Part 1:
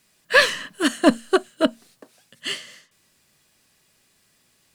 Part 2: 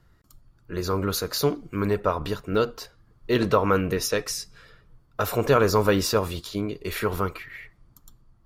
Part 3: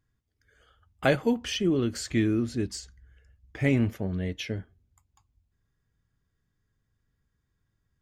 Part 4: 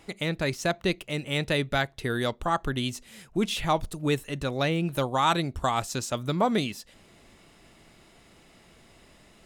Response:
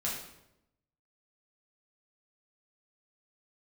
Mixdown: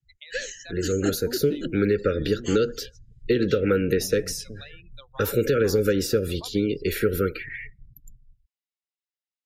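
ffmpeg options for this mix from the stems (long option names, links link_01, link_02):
-filter_complex "[0:a]lowpass=frequency=6700:width_type=q:width=8.4,volume=-11.5dB[link_01];[1:a]dynaudnorm=framelen=860:gausssize=3:maxgain=12dB,volume=1.5dB,asplit=2[link_02][link_03];[2:a]volume=-5.5dB[link_04];[3:a]bandpass=frequency=5700:width_type=q:width=0.94:csg=0,volume=-2dB[link_05];[link_03]apad=whole_len=353642[link_06];[link_04][link_06]sidechaincompress=threshold=-15dB:ratio=8:attack=7.4:release=290[link_07];[link_07][link_05]amix=inputs=2:normalize=0,highshelf=frequency=6200:gain=-8.5,acompressor=threshold=-34dB:ratio=6,volume=0dB[link_08];[link_01][link_02]amix=inputs=2:normalize=0,asuperstop=centerf=870:order=12:qfactor=1,alimiter=limit=-6.5dB:level=0:latency=1:release=177,volume=0dB[link_09];[link_08][link_09]amix=inputs=2:normalize=0,afftdn=noise_reduction=33:noise_floor=-39,acrossover=split=240|1200[link_10][link_11][link_12];[link_10]acompressor=threshold=-29dB:ratio=4[link_13];[link_11]acompressor=threshold=-19dB:ratio=4[link_14];[link_12]acompressor=threshold=-35dB:ratio=4[link_15];[link_13][link_14][link_15]amix=inputs=3:normalize=0,adynamicequalizer=threshold=0.00794:dfrequency=5200:dqfactor=0.7:tfrequency=5200:tqfactor=0.7:attack=5:release=100:ratio=0.375:range=2.5:mode=boostabove:tftype=highshelf"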